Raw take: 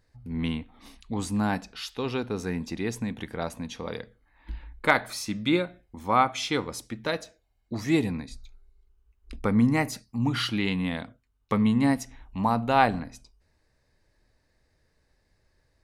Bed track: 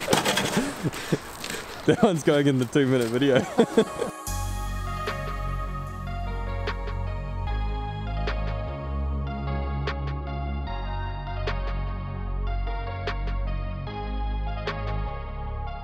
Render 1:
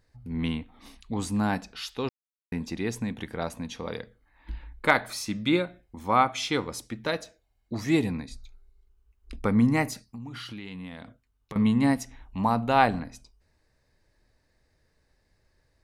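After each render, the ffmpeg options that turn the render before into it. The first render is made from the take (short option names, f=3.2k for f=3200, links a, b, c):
-filter_complex "[0:a]asettb=1/sr,asplit=3[a][b][c];[a]atrim=end=9.934[d];[b]atrim=start=9.93:end=11.56,asetpts=PTS-STARTPTS,afade=t=in:d=0.004:c=qsin,afade=t=out:st=1.626:d=0.004:c=qsin,acompressor=threshold=-36dB:ratio=8:attack=3.2:release=140:knee=1:detection=peak[e];[c]atrim=start=11.556[f];[d][e]acrossfade=d=0.004:c1=hsin:c2=qsin[g];[g][f]acrossfade=d=0.004:c1=qsin:c2=hsin,asplit=3[h][i][j];[h]atrim=end=2.09,asetpts=PTS-STARTPTS,afade=t=out:st=2.086:d=0.004:c=hsin[k];[i]atrim=start=2.09:end=2.52,asetpts=PTS-STARTPTS,volume=0[l];[j]atrim=start=2.52,asetpts=PTS-STARTPTS,afade=t=in:d=0.004:c=hsin[m];[k][l][m]concat=n=3:v=0:a=1"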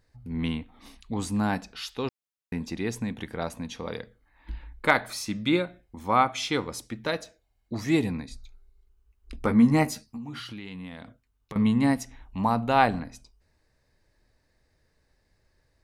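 -filter_complex "[0:a]asettb=1/sr,asplit=3[a][b][c];[a]atrim=end=9.394[d];[b]atrim=start=9.39:end=10.4,asetpts=PTS-STARTPTS,afade=t=in:d=0.004:c=qsin,afade=t=out:st=1.006:d=0.004:c=qsin,asplit=2[e][f];[f]adelay=13,volume=-3dB[g];[e][g]amix=inputs=2:normalize=0,atrim=end_sample=44541[h];[c]atrim=start=10.396[i];[d][h]acrossfade=d=0.004:c1=hsin:c2=qsin[j];[j][i]acrossfade=d=0.004:c1=qsin:c2=hsin"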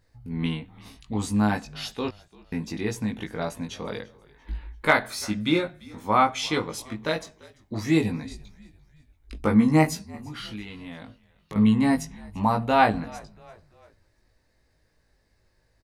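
-filter_complex "[0:a]asplit=2[a][b];[b]adelay=19,volume=-3dB[c];[a][c]amix=inputs=2:normalize=0,asplit=4[d][e][f][g];[e]adelay=342,afreqshift=-58,volume=-23dB[h];[f]adelay=684,afreqshift=-116,volume=-29.9dB[i];[g]adelay=1026,afreqshift=-174,volume=-36.9dB[j];[d][h][i][j]amix=inputs=4:normalize=0"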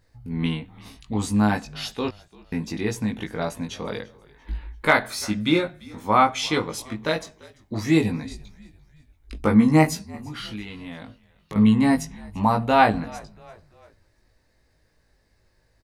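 -af "volume=2.5dB,alimiter=limit=-2dB:level=0:latency=1"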